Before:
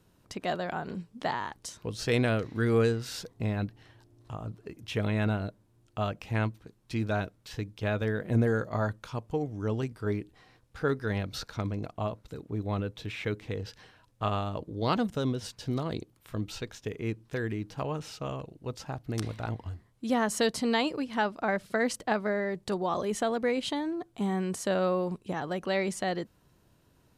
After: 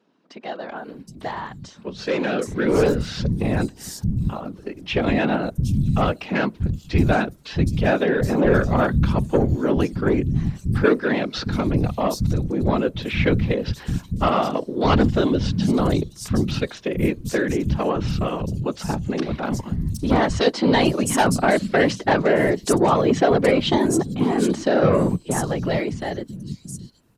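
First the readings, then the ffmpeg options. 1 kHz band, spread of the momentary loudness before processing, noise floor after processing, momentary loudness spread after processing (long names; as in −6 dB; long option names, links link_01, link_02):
+10.0 dB, 12 LU, −46 dBFS, 12 LU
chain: -filter_complex "[0:a]aeval=exprs='0.211*(cos(1*acos(clip(val(0)/0.211,-1,1)))-cos(1*PI/2))+0.0531*(cos(5*acos(clip(val(0)/0.211,-1,1)))-cos(5*PI/2))':channel_layout=same,dynaudnorm=framelen=340:gausssize=13:maxgain=12dB,afftfilt=real='hypot(re,im)*cos(2*PI*random(0))':imag='hypot(re,im)*sin(2*PI*random(1))':win_size=512:overlap=0.75,equalizer=frequency=210:width_type=o:width=1.6:gain=4.5,acrossover=split=200|5400[link_01][link_02][link_03];[link_01]adelay=630[link_04];[link_03]adelay=770[link_05];[link_04][link_02][link_05]amix=inputs=3:normalize=0"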